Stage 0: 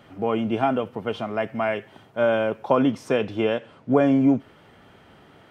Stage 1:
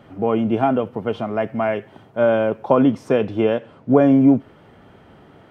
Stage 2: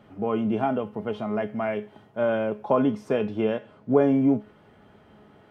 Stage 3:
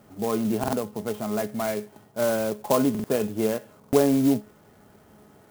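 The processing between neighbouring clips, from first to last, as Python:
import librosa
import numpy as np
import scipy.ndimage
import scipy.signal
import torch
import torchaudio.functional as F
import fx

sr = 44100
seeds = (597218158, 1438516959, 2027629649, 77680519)

y1 = fx.tilt_shelf(x, sr, db=4.5, hz=1400.0)
y1 = F.gain(torch.from_numpy(y1), 1.0).numpy()
y2 = fx.comb_fb(y1, sr, f0_hz=210.0, decay_s=0.26, harmonics='all', damping=0.0, mix_pct=70)
y2 = F.gain(torch.from_numpy(y2), 1.5).numpy()
y3 = fx.buffer_glitch(y2, sr, at_s=(0.59, 2.9, 3.79), block=2048, repeats=2)
y3 = fx.clock_jitter(y3, sr, seeds[0], jitter_ms=0.06)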